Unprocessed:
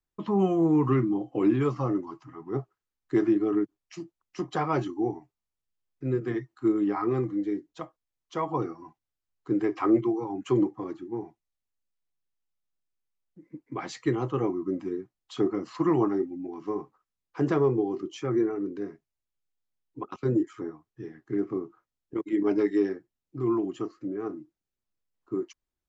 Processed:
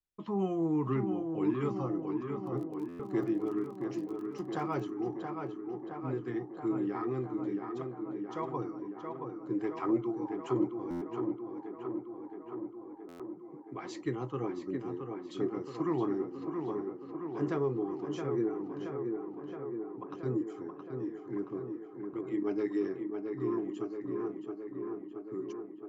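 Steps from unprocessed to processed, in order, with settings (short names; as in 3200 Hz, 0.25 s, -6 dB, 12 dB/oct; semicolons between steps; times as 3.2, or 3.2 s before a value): 2.45–4.89 crackle 29/s -35 dBFS; tape echo 0.672 s, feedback 81%, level -4 dB, low-pass 2400 Hz; stuck buffer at 2.88/10.9/13.08, samples 512, times 9; gain -8 dB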